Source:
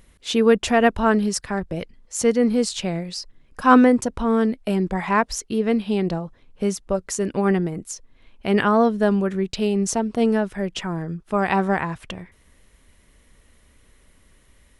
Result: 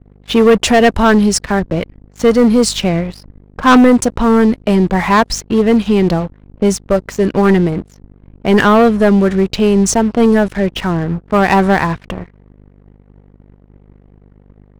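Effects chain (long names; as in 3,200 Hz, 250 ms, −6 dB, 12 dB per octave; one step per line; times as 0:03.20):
mains hum 50 Hz, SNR 22 dB
low-pass that shuts in the quiet parts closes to 800 Hz, open at −17 dBFS
leveller curve on the samples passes 3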